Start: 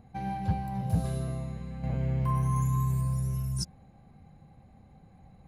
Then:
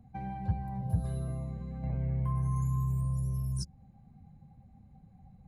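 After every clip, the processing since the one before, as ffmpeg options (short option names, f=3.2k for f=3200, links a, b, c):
-filter_complex "[0:a]afftdn=nr=12:nf=-50,acrossover=split=130[a][b];[b]acompressor=threshold=-40dB:ratio=3[c];[a][c]amix=inputs=2:normalize=0"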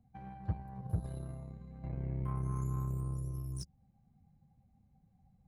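-af "aeval=exprs='0.126*(cos(1*acos(clip(val(0)/0.126,-1,1)))-cos(1*PI/2))+0.01*(cos(7*acos(clip(val(0)/0.126,-1,1)))-cos(7*PI/2))':c=same,volume=-4.5dB"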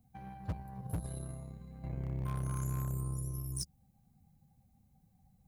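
-af "aeval=exprs='0.0422*(abs(mod(val(0)/0.0422+3,4)-2)-1)':c=same,crystalizer=i=2.5:c=0"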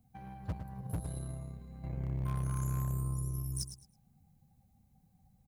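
-af "aecho=1:1:108|216|324:0.299|0.0687|0.0158"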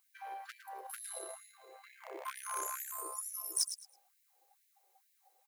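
-af "asoftclip=type=hard:threshold=-25dB,afftfilt=real='re*gte(b*sr/1024,340*pow(1700/340,0.5+0.5*sin(2*PI*2.2*pts/sr)))':imag='im*gte(b*sr/1024,340*pow(1700/340,0.5+0.5*sin(2*PI*2.2*pts/sr)))':win_size=1024:overlap=0.75,volume=8.5dB"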